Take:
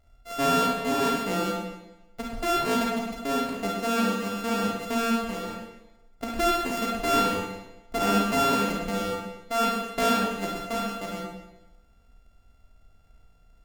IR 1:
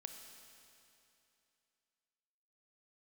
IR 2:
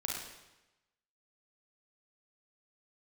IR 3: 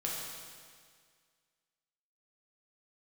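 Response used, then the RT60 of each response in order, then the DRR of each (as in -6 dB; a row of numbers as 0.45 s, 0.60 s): 2; 2.8 s, 1.0 s, 1.9 s; 5.0 dB, -2.5 dB, -4.5 dB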